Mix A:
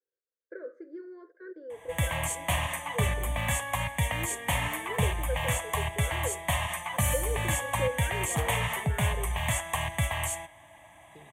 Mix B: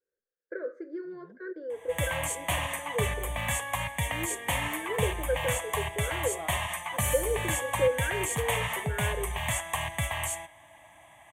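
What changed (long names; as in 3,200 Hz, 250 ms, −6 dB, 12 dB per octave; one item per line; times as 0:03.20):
first voice +7.0 dB
second voice: entry −1.95 s
master: add low-shelf EQ 390 Hz −4 dB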